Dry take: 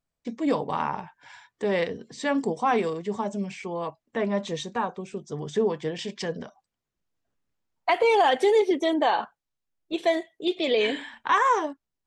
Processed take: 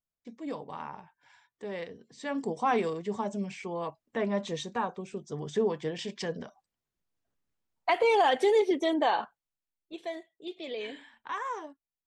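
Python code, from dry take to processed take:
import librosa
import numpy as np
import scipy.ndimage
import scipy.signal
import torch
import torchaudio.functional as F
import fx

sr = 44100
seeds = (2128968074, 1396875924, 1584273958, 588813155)

y = fx.gain(x, sr, db=fx.line((2.06, -12.5), (2.62, -3.5), (9.15, -3.5), (10.02, -14.0)))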